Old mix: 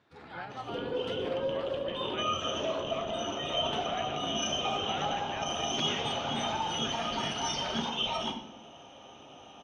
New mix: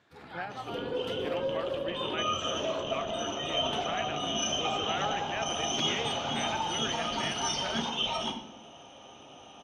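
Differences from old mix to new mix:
speech +5.5 dB; master: remove distance through air 55 m

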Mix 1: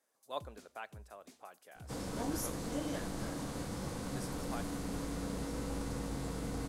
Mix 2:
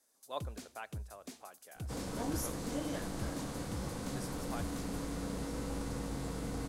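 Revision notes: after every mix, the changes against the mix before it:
first sound +9.5 dB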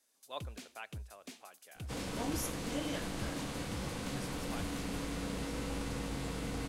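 speech -4.0 dB; first sound: send -11.5 dB; master: add peaking EQ 2.7 kHz +8.5 dB 1.2 oct

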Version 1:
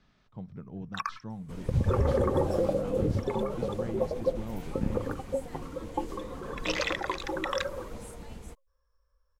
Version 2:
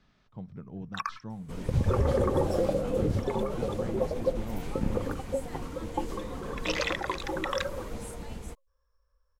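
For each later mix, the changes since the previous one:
second sound +4.0 dB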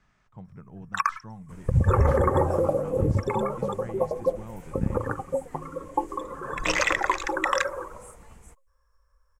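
first sound +6.5 dB; second sound -9.5 dB; master: add graphic EQ 250/500/1000/2000/4000/8000 Hz -5/-3/+3/+4/-10/+9 dB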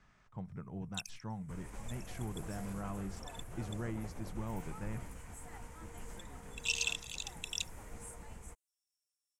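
first sound: add rippled Chebyshev high-pass 2.6 kHz, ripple 6 dB

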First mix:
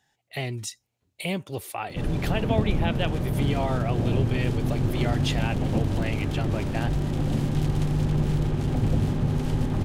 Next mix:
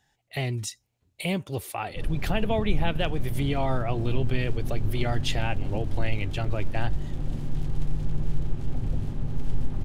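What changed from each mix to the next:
background -11.5 dB; master: remove high-pass 130 Hz 6 dB/octave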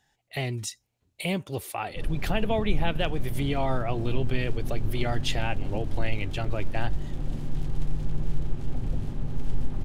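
master: add peaking EQ 94 Hz -3 dB 1.5 oct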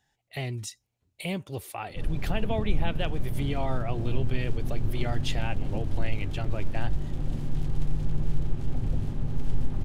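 speech -4.0 dB; master: add peaking EQ 94 Hz +3 dB 1.5 oct

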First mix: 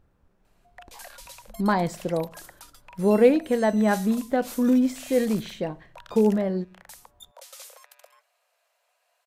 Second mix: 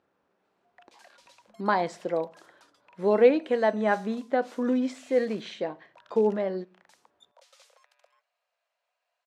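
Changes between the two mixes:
background -9.5 dB; master: add band-pass 340–5200 Hz

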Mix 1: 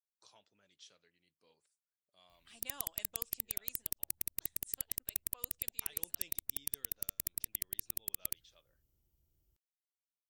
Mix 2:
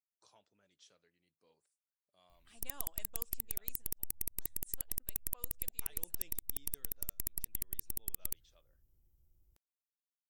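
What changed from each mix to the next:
background: remove high-pass 86 Hz 6 dB/octave; master: add peaking EQ 3.5 kHz -6.5 dB 2 oct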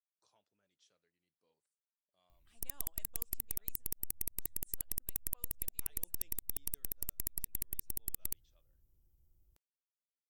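speech -8.0 dB

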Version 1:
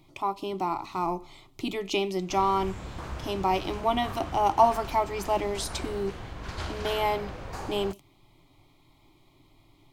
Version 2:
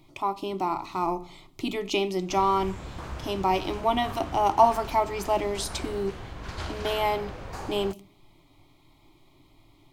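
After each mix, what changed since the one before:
reverb: on, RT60 0.55 s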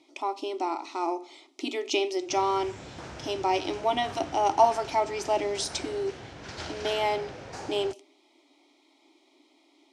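speech: add brick-wall FIR high-pass 240 Hz; master: add cabinet simulation 130–9200 Hz, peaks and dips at 190 Hz -4 dB, 1.1 kHz -8 dB, 5.6 kHz +6 dB

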